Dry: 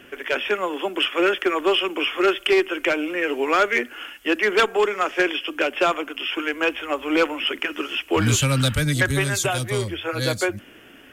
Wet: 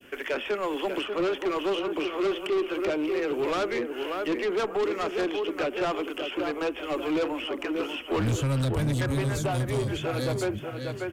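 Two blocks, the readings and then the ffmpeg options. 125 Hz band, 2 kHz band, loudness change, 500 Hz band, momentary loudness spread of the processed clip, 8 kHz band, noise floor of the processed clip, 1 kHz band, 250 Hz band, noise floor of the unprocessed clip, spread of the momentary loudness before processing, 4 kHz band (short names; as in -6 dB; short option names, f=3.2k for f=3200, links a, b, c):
-3.5 dB, -12.0 dB, -6.5 dB, -4.5 dB, 5 LU, -13.0 dB, -39 dBFS, -7.5 dB, -3.5 dB, -47 dBFS, 7 LU, -11.0 dB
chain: -filter_complex "[0:a]agate=range=-33dB:threshold=-43dB:ratio=3:detection=peak,asplit=2[a][b];[b]adelay=589,lowpass=f=1.6k:p=1,volume=-8dB,asplit=2[c][d];[d]adelay=589,lowpass=f=1.6k:p=1,volume=0.37,asplit=2[e][f];[f]adelay=589,lowpass=f=1.6k:p=1,volume=0.37,asplit=2[g][h];[h]adelay=589,lowpass=f=1.6k:p=1,volume=0.37[i];[a][c][e][g][i]amix=inputs=5:normalize=0,acrossover=split=840|1600[j][k][l];[l]acompressor=threshold=-34dB:ratio=12[m];[j][k][m]amix=inputs=3:normalize=0,asoftclip=type=tanh:threshold=-22dB,adynamicequalizer=threshold=0.00708:dfrequency=1600:dqfactor=1.4:tfrequency=1600:tqfactor=1.4:attack=5:release=100:ratio=0.375:range=3:mode=cutabove:tftype=bell"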